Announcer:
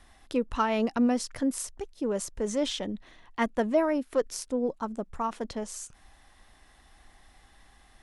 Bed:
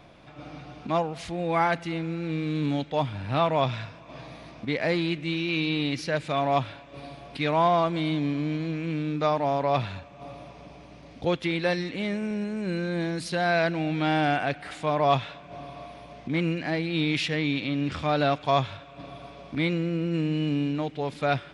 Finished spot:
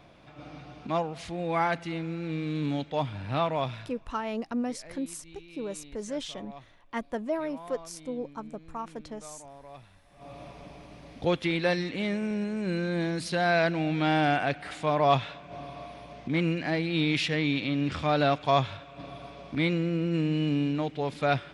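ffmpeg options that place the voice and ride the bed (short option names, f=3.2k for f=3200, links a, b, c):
-filter_complex "[0:a]adelay=3550,volume=-6dB[a];[1:a]volume=19.5dB,afade=t=out:st=3.34:d=0.95:silence=0.1,afade=t=in:st=10.03:d=0.42:silence=0.0749894[b];[a][b]amix=inputs=2:normalize=0"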